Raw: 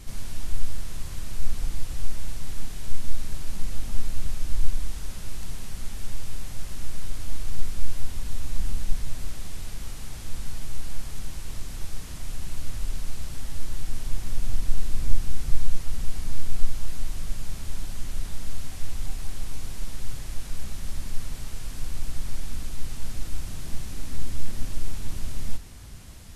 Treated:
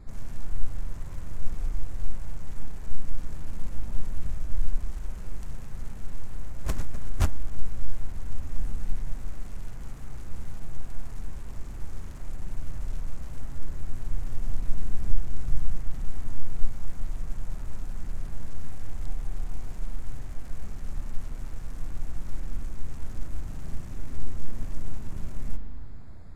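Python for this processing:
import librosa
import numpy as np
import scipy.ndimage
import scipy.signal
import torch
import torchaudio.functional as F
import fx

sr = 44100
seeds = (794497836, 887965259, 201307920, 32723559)

y = fx.wiener(x, sr, points=15)
y = fx.rev_spring(y, sr, rt60_s=2.1, pass_ms=(39,), chirp_ms=30, drr_db=6.0)
y = fx.pre_swell(y, sr, db_per_s=35.0, at=(6.6, 7.4))
y = F.gain(torch.from_numpy(y), -2.5).numpy()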